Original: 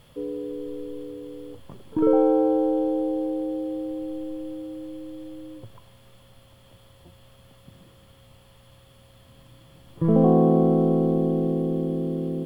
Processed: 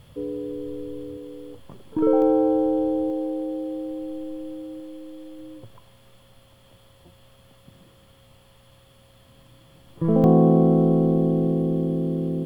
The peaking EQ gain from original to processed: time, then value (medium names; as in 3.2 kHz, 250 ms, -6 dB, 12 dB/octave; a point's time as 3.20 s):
peaking EQ 83 Hz 1.9 oct
+9 dB
from 1.17 s -1.5 dB
from 2.22 s +8 dB
from 3.10 s -3.5 dB
from 4.80 s -12.5 dB
from 5.39 s -2.5 dB
from 10.24 s +8 dB